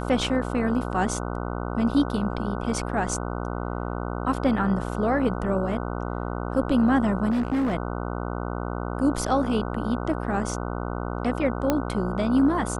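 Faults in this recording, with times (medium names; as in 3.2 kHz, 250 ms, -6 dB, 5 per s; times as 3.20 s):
buzz 60 Hz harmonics 25 -30 dBFS
7.30–7.74 s: clipped -20.5 dBFS
11.70 s: pop -8 dBFS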